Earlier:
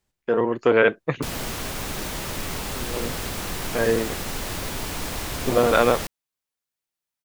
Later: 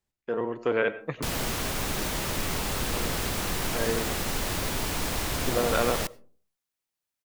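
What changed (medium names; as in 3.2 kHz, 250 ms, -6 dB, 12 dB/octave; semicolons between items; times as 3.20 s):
speech -10.0 dB; reverb: on, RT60 0.40 s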